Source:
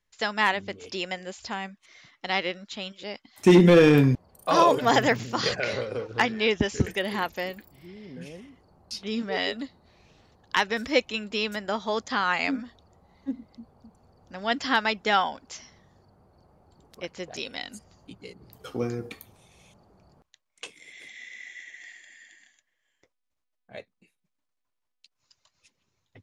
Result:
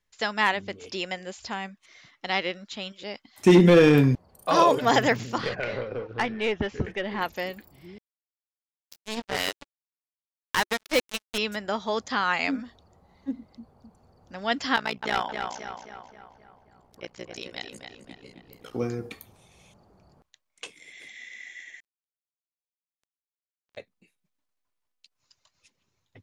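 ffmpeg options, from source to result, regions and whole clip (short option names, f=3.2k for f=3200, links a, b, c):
-filter_complex "[0:a]asettb=1/sr,asplit=3[a][b][c];[a]atrim=end=5.384[d];[b]atrim=start=5.38:end=7.21,asetpts=PTS-STARTPTS,afade=t=in:d=0.004:c=qsin,afade=t=out:st=1.826:d=0.004:c=qsin,lowpass=2.7k,aeval=exprs='(tanh(7.94*val(0)+0.35)-tanh(0.35))/7.94':c=same[e];[c]atrim=start=7.206[f];[d][e]acrossfade=d=0.004:c1=hsin:c2=qsin[g];[g][f]acrossfade=d=0.004:c1=qsin:c2=hsin,asettb=1/sr,asplit=3[h][i][j];[h]atrim=end=7.984[k];[i]atrim=start=7.98:end=11.38,asetpts=PTS-STARTPTS,afade=t=in:d=0.004:c=qsin,afade=t=out:st=3.396:d=0.004:c=qsin,acrusher=bits=3:mix=0:aa=0.5,asoftclip=type=hard:threshold=-15.5dB,equalizer=f=360:w=7.1:g=-4[l];[j]atrim=start=11.376[m];[k][l]acrossfade=d=0.004:c1=hsin:c2=qsin[n];[n][m]acrossfade=d=0.004:c1=qsin:c2=hsin,asettb=1/sr,asplit=3[o][p][q];[o]atrim=end=14.764[r];[p]atrim=start=14.76:end=18.74,asetpts=PTS-STARTPTS,afade=t=in:d=0.004:c=qsin,afade=t=out:st=3.976:d=0.004:c=qsin,tremolo=f=60:d=0.974,aeval=exprs='clip(val(0),-1,0.0891)':c=same,asplit=2[s][t];[t]adelay=265,lowpass=f=3.3k:p=1,volume=-5dB,asplit=2[u][v];[v]adelay=265,lowpass=f=3.3k:p=1,volume=0.54,asplit=2[w][x];[x]adelay=265,lowpass=f=3.3k:p=1,volume=0.54,asplit=2[y][z];[z]adelay=265,lowpass=f=3.3k:p=1,volume=0.54,asplit=2[aa][ab];[ab]adelay=265,lowpass=f=3.3k:p=1,volume=0.54,asplit=2[ac][ad];[ad]adelay=265,lowpass=f=3.3k:p=1,volume=0.54,asplit=2[ae][af];[af]adelay=265,lowpass=f=3.3k:p=1,volume=0.54[ag];[s][u][w][y][aa][ac][ae][ag]amix=inputs=8:normalize=0,atrim=end_sample=175518[ah];[q]atrim=start=18.736[ai];[r][ah]acrossfade=d=0.004:c1=hsin:c2=qsin[aj];[aj][ai]acrossfade=d=0.004:c1=qsin:c2=hsin,asettb=1/sr,asplit=3[ak][al][am];[ak]atrim=end=21.804[an];[al]atrim=start=21.8:end=23.77,asetpts=PTS-STARTPTS,afade=t=in:d=0.004:c=qsin,afade=t=out:st=1.966:d=0.004:c=qsin,lowpass=4.1k,acompressor=threshold=-55dB:ratio=4:attack=3.2:release=140:knee=1:detection=peak,acrusher=bits=6:mix=0:aa=0.5[ao];[am]atrim=start=23.766[ap];[an][ao]acrossfade=d=0.004:c1=hsin:c2=qsin[aq];[aq][ap]acrossfade=d=0.004:c1=qsin:c2=hsin"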